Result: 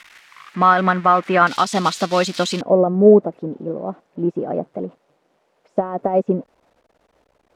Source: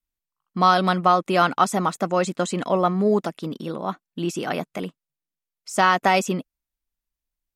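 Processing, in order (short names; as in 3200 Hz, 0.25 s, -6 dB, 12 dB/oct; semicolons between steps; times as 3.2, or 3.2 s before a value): switching spikes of -17 dBFS; limiter -10.5 dBFS, peak gain reduction 6 dB; synth low-pass 1900 Hz, resonance Q 1.8, from 1.47 s 4200 Hz, from 2.61 s 550 Hz; upward expander 1.5:1, over -28 dBFS; gain +7 dB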